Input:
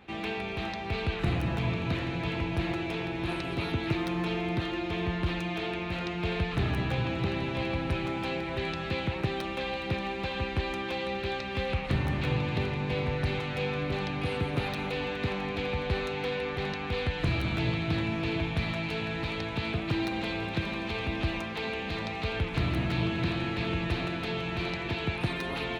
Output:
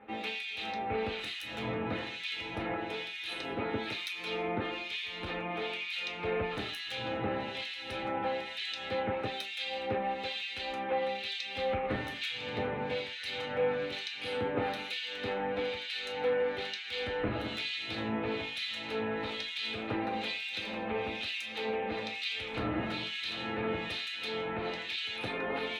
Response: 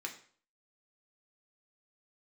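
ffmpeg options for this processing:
-filter_complex "[0:a]acrossover=split=2000[s0][s1];[s0]aeval=exprs='val(0)*(1-1/2+1/2*cos(2*PI*1.1*n/s))':c=same[s2];[s1]aeval=exprs='val(0)*(1-1/2-1/2*cos(2*PI*1.1*n/s))':c=same[s3];[s2][s3]amix=inputs=2:normalize=0[s4];[1:a]atrim=start_sample=2205,atrim=end_sample=3528,asetrate=70560,aresample=44100[s5];[s4][s5]afir=irnorm=-1:irlink=0,volume=2.66"

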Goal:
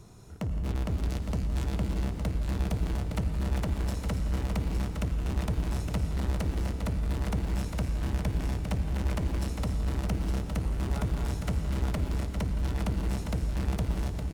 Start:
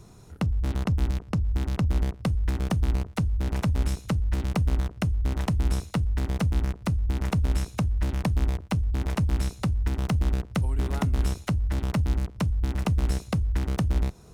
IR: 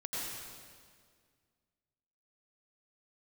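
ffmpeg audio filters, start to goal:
-filter_complex "[0:a]asoftclip=type=hard:threshold=0.0447,asettb=1/sr,asplit=3[s0][s1][s2];[s0]atrim=end=0.914[s3];[s1]atrim=start=0.91:end=1.67,asetpts=PTS-STARTPTS,afade=t=in:d=0.004:c=qsin,afade=t=out:st=0.756:d=0.004:c=qsin,equalizer=f=7600:w=0.6:g=6[s4];[s2]atrim=start=1.666[s5];[s3][s4]acrossfade=d=0.004:c1=hsin:c2=qsin[s6];[s6][s5]acrossfade=d=0.004:c1=qsin:c2=hsin,aecho=1:1:54|82|167|249|280|863:0.119|0.112|0.15|0.316|0.299|0.473,asplit=2[s7][s8];[1:a]atrim=start_sample=2205,asetrate=37044,aresample=44100[s9];[s8][s9]afir=irnorm=-1:irlink=0,volume=0.316[s10];[s7][s10]amix=inputs=2:normalize=0,volume=0.668"

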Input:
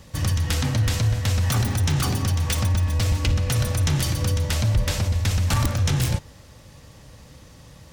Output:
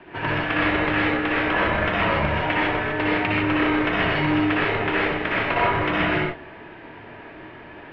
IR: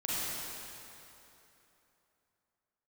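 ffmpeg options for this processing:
-filter_complex "[0:a]highpass=f=350:t=q:w=0.5412,highpass=f=350:t=q:w=1.307,lowpass=f=2800:t=q:w=0.5176,lowpass=f=2800:t=q:w=0.7071,lowpass=f=2800:t=q:w=1.932,afreqshift=-190,acompressor=threshold=0.0316:ratio=6[s0];[1:a]atrim=start_sample=2205,afade=t=out:st=0.16:d=0.01,atrim=end_sample=7497,asetrate=29547,aresample=44100[s1];[s0][s1]afir=irnorm=-1:irlink=0,volume=2.66"

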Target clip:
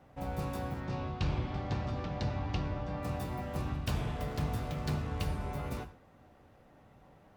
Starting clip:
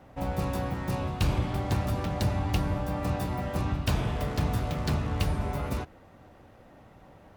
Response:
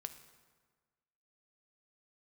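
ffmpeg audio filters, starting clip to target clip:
-filter_complex "[0:a]asettb=1/sr,asplit=3[s0][s1][s2];[s0]atrim=end=0.804[s3];[s1]atrim=start=0.8:end=3.03,asetpts=PTS-STARTPTS,afade=t=in:d=0.004:c=qsin,afade=t=out:st=2.226:d=0.004:c=qsin,lowpass=f=5600:w=0.5412,lowpass=f=5600:w=1.3066[s4];[s2]atrim=start=3.026[s5];[s3][s4]acrossfade=d=0.004:c1=hsin:c2=qsin[s6];[s6][s5]acrossfade=d=0.004:c1=qsin:c2=hsin[s7];[1:a]atrim=start_sample=2205,atrim=end_sample=6174[s8];[s7][s8]afir=irnorm=-1:irlink=0,volume=0.708"

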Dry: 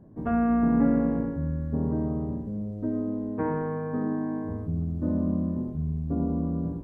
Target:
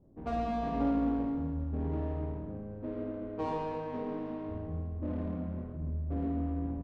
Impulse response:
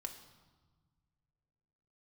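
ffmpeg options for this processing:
-filter_complex "[0:a]lowpass=f=1200:w=0.5412,lowpass=f=1200:w=1.3066,equalizer=f=170:w=0.7:g=-10.5,bandreject=f=111.5:t=h:w=4,bandreject=f=223:t=h:w=4,bandreject=f=334.5:t=h:w=4,bandreject=f=446:t=h:w=4,bandreject=f=557.5:t=h:w=4,bandreject=f=669:t=h:w=4,adynamicsmooth=sensitivity=7:basefreq=550,flanger=delay=2:depth=9.5:regen=-81:speed=0.52:shape=triangular,aecho=1:1:50|130|258|462.8|790.5:0.631|0.398|0.251|0.158|0.1,asplit=2[s0][s1];[1:a]atrim=start_sample=2205[s2];[s1][s2]afir=irnorm=-1:irlink=0,volume=0.398[s3];[s0][s3]amix=inputs=2:normalize=0"

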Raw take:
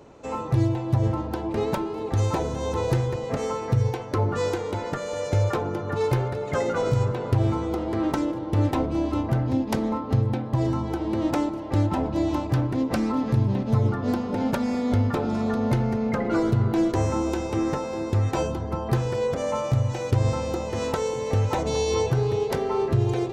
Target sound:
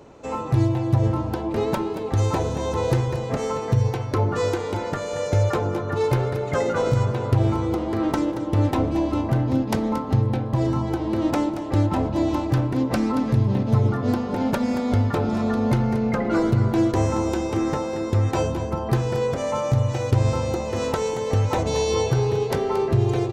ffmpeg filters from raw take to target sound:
-af "aecho=1:1:228:0.266,volume=1.26"

